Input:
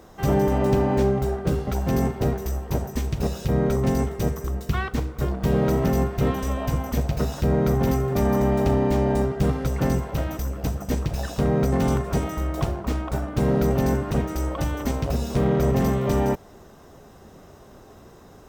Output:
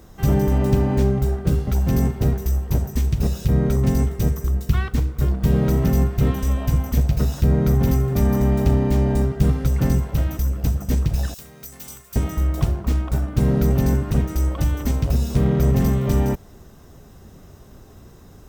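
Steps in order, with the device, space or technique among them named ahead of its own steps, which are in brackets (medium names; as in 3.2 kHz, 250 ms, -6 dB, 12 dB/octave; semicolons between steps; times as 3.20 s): 11.34–12.16 s: pre-emphasis filter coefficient 0.97; smiley-face EQ (bass shelf 170 Hz +8.5 dB; peaking EQ 690 Hz -5 dB 2.1 oct; treble shelf 8.7 kHz +6 dB)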